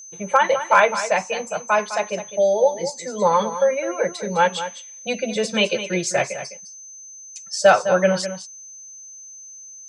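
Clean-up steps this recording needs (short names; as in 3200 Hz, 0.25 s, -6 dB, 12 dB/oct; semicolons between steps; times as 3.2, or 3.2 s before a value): clip repair -4.5 dBFS; notch 6200 Hz, Q 30; inverse comb 0.207 s -11.5 dB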